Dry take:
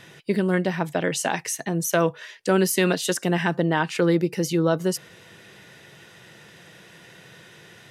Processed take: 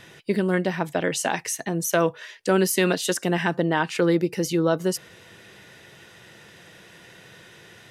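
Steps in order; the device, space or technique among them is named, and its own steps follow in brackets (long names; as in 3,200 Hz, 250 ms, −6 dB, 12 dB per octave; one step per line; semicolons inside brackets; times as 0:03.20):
low shelf boost with a cut just above (low-shelf EQ 85 Hz +5.5 dB; parametric band 150 Hz −4.5 dB 0.62 octaves)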